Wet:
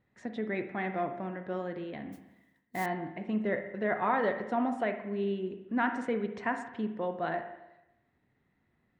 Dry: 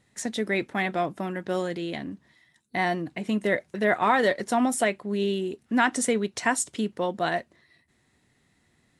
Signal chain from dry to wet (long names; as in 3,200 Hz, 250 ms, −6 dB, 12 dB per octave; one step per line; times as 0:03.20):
low-pass filter 2,000 Hz 12 dB per octave
0:02.12–0:02.86: noise that follows the level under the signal 15 dB
on a send: convolution reverb RT60 0.95 s, pre-delay 37 ms, DRR 7 dB
on the sum: level −7 dB